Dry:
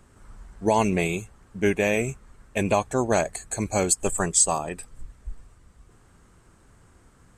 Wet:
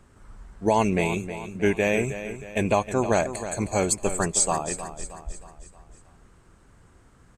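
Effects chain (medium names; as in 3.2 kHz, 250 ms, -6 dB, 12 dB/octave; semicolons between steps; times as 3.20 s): treble shelf 7.7 kHz -6 dB; on a send: feedback delay 314 ms, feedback 48%, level -11.5 dB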